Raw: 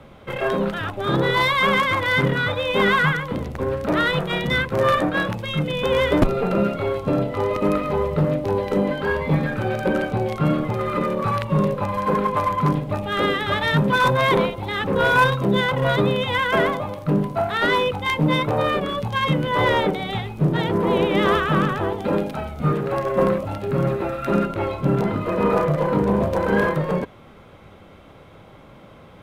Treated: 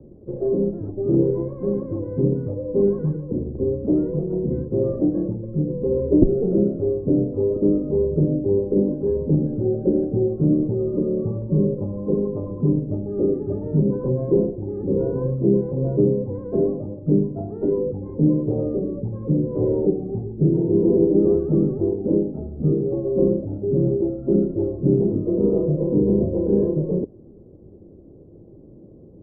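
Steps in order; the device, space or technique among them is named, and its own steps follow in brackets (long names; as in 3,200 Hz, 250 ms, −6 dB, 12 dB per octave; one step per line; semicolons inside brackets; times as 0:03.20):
under water (low-pass filter 450 Hz 24 dB per octave; parametric band 350 Hz +8.5 dB 0.55 octaves)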